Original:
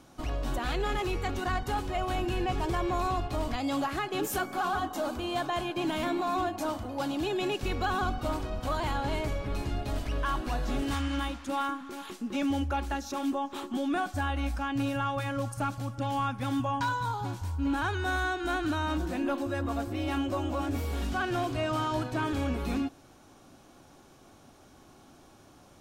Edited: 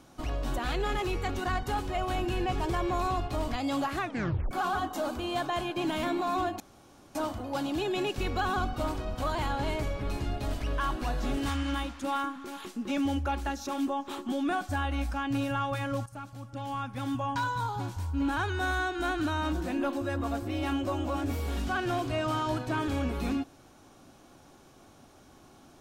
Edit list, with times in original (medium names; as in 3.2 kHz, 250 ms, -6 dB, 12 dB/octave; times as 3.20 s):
3.98 s: tape stop 0.53 s
6.60 s: insert room tone 0.55 s
15.51–17.04 s: fade in linear, from -13 dB